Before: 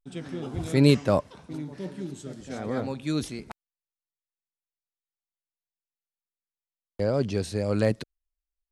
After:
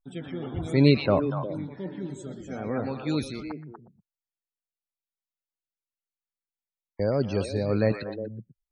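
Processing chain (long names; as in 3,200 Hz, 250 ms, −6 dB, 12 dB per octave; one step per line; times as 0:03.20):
spectral peaks only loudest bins 64
echo through a band-pass that steps 120 ms, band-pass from 2,700 Hz, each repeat −1.4 octaves, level −1.5 dB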